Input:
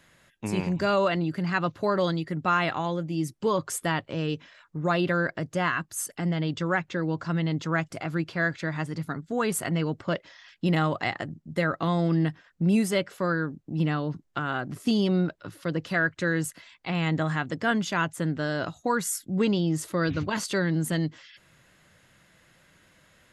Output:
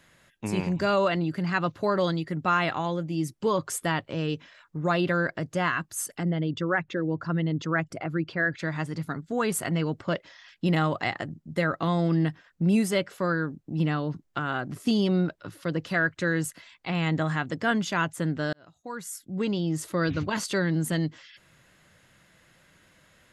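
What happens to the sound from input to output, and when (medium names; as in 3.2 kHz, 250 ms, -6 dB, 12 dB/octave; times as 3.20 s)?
6.23–8.59 s: resonances exaggerated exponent 1.5
18.53–19.98 s: fade in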